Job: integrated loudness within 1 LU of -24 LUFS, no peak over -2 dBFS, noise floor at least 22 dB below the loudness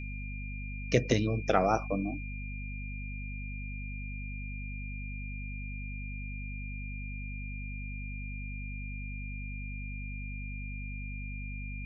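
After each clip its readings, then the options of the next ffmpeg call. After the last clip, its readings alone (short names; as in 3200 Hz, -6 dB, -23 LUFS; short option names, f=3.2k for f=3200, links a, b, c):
hum 50 Hz; harmonics up to 250 Hz; hum level -37 dBFS; steady tone 2400 Hz; tone level -44 dBFS; loudness -36.5 LUFS; peak -10.5 dBFS; loudness target -24.0 LUFS
-> -af "bandreject=f=50:t=h:w=4,bandreject=f=100:t=h:w=4,bandreject=f=150:t=h:w=4,bandreject=f=200:t=h:w=4,bandreject=f=250:t=h:w=4"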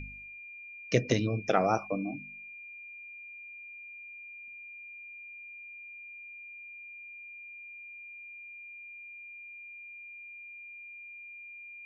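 hum none; steady tone 2400 Hz; tone level -44 dBFS
-> -af "bandreject=f=2.4k:w=30"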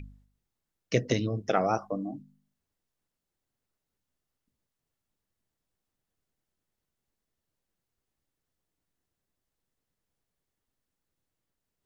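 steady tone none; loudness -30.0 LUFS; peak -11.0 dBFS; loudness target -24.0 LUFS
-> -af "volume=6dB"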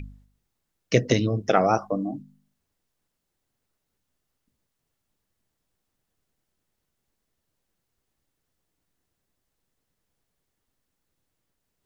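loudness -24.0 LUFS; peak -5.0 dBFS; noise floor -80 dBFS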